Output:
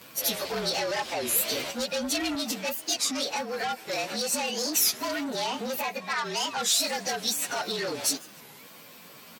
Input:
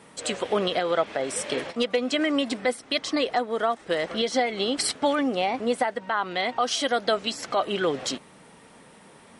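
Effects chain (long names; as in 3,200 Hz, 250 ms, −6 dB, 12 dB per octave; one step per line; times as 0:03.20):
partials spread apart or drawn together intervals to 112%
soft clipping −27 dBFS, distortion −10 dB
high-pass filter 42 Hz 12 dB per octave, from 0:02.35 120 Hz
brickwall limiter −28.5 dBFS, peak gain reduction 5.5 dB
high-shelf EQ 2,300 Hz +11.5 dB
repeating echo 161 ms, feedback 43%, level −23.5 dB
wow of a warped record 33 1/3 rpm, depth 250 cents
level +2 dB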